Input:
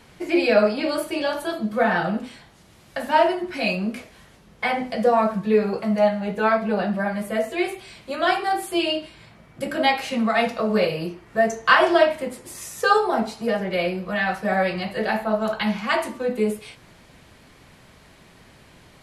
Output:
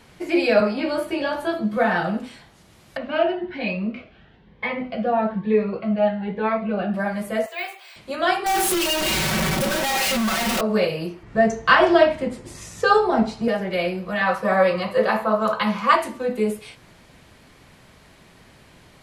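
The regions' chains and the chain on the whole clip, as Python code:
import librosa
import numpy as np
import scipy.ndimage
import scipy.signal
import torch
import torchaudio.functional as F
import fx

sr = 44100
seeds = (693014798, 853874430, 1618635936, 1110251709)

y = fx.chain(x, sr, fx.high_shelf(hz=4100.0, db=-10.0),
    fx.doubler(ms=15.0, db=-5.0),
    fx.band_squash(depth_pct=40), at=(0.6, 1.77))
y = fx.chain(y, sr, fx.lowpass(hz=3300.0, slope=24),
    fx.notch_cascade(direction='rising', hz=1.1), at=(2.97, 6.94))
y = fx.chain(y, sr, fx.highpass(hz=630.0, slope=24),
    fx.high_shelf(hz=6200.0, db=-6.5),
    fx.resample_bad(factor=2, down='filtered', up='hold'), at=(7.46, 7.96))
y = fx.chain(y, sr, fx.clip_1bit(),
    fx.comb(ms=5.3, depth=0.82), at=(8.46, 10.61))
y = fx.chain(y, sr, fx.lowpass(hz=6900.0, slope=12),
    fx.low_shelf(hz=230.0, db=11.5), at=(11.23, 13.48))
y = fx.chain(y, sr, fx.highpass(hz=62.0, slope=12),
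    fx.peak_eq(hz=1200.0, db=12.0, octaves=0.26),
    fx.small_body(hz=(520.0, 1000.0), ring_ms=95, db=16), at=(14.21, 15.96))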